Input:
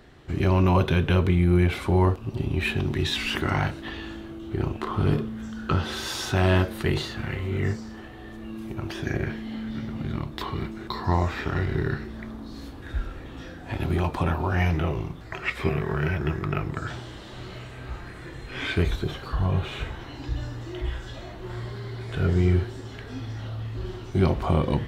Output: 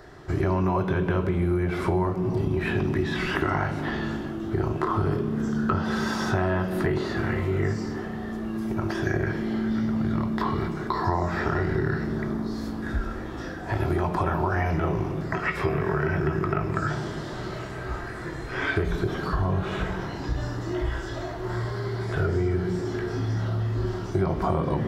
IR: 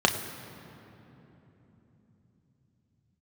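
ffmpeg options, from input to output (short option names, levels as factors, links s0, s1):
-filter_complex "[0:a]acrossover=split=2800[s0][s1];[s1]acompressor=threshold=0.00562:ratio=4:attack=1:release=60[s2];[s0][s2]amix=inputs=2:normalize=0,asplit=2[s3][s4];[1:a]atrim=start_sample=2205,asetrate=74970,aresample=44100[s5];[s4][s5]afir=irnorm=-1:irlink=0,volume=0.282[s6];[s3][s6]amix=inputs=2:normalize=0,acompressor=threshold=0.0708:ratio=6,volume=1.26"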